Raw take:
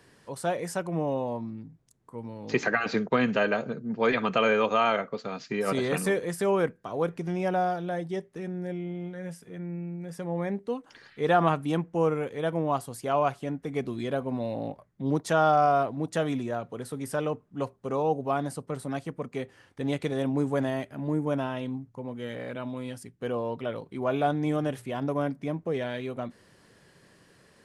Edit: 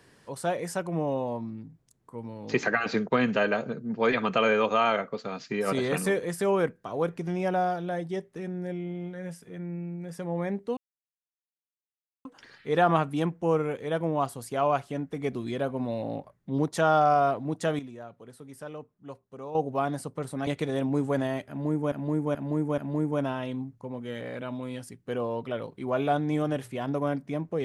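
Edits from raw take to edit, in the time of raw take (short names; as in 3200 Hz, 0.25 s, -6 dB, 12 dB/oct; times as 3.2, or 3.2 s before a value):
10.77 insert silence 1.48 s
16.31–18.07 gain -11 dB
18.99–19.9 cut
20.92–21.35 loop, 4 plays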